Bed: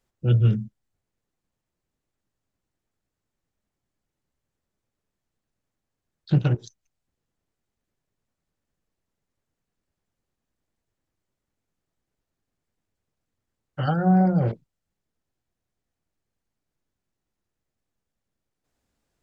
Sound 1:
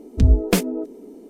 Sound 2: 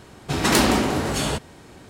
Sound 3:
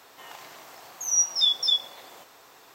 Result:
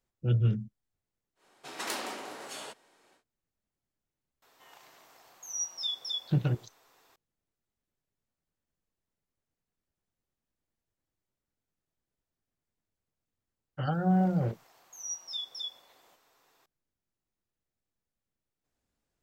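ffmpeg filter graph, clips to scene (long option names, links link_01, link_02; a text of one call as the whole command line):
ffmpeg -i bed.wav -i cue0.wav -i cue1.wav -i cue2.wav -filter_complex "[3:a]asplit=2[link_01][link_02];[0:a]volume=-7dB[link_03];[2:a]highpass=490,atrim=end=1.89,asetpts=PTS-STARTPTS,volume=-15.5dB,afade=type=in:duration=0.1,afade=type=out:start_time=1.79:duration=0.1,adelay=1350[link_04];[link_01]atrim=end=2.74,asetpts=PTS-STARTPTS,volume=-12dB,afade=type=in:duration=0.004:curve=hsin,afade=type=out:start_time=2.736:duration=0.004:curve=hsin,adelay=4420[link_05];[link_02]atrim=end=2.74,asetpts=PTS-STARTPTS,volume=-15.5dB,afade=type=in:duration=0.004:curve=hsin,afade=type=out:start_time=2.736:duration=0.004:curve=hsin,adelay=13920[link_06];[link_03][link_04][link_05][link_06]amix=inputs=4:normalize=0" out.wav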